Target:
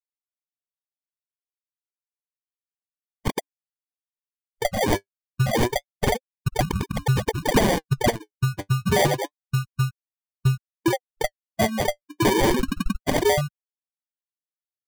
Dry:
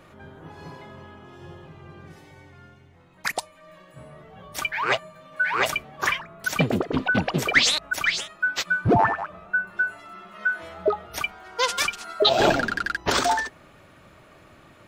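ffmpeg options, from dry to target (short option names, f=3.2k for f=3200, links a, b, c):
-filter_complex "[0:a]afftfilt=real='re*gte(hypot(re,im),0.158)':imag='im*gte(hypot(re,im),0.158)':win_size=1024:overlap=0.75,agate=range=-12dB:threshold=-46dB:ratio=16:detection=peak,afreqshift=-290,highpass=f=290:p=1,asplit=2[a][b];[b]acompressor=threshold=-31dB:ratio=8,volume=0.5dB[c];[a][c]amix=inputs=2:normalize=0,afftdn=nr=30:nf=-37,acrusher=samples=33:mix=1:aa=0.000001,flanger=delay=0.8:depth=9.4:regen=43:speed=0.29:shape=sinusoidal,acontrast=73,asoftclip=type=tanh:threshold=-11dB"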